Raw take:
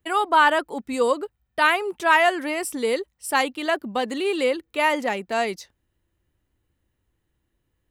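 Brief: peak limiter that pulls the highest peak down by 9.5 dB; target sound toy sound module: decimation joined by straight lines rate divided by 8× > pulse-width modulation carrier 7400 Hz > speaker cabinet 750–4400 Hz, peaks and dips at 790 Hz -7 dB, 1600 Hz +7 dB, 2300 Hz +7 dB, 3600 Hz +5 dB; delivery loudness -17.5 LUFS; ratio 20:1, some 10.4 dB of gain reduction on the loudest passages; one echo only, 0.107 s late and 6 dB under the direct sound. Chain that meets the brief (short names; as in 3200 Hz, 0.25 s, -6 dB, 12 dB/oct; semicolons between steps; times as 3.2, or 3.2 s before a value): compressor 20:1, threshold -22 dBFS; limiter -22.5 dBFS; echo 0.107 s -6 dB; decimation joined by straight lines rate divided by 8×; pulse-width modulation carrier 7400 Hz; speaker cabinet 750–4400 Hz, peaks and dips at 790 Hz -7 dB, 1600 Hz +7 dB, 2300 Hz +7 dB, 3600 Hz +5 dB; gain +16.5 dB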